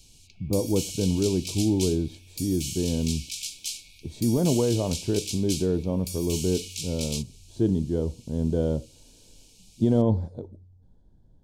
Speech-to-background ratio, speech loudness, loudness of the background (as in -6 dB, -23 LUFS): 7.5 dB, -26.5 LUFS, -34.0 LUFS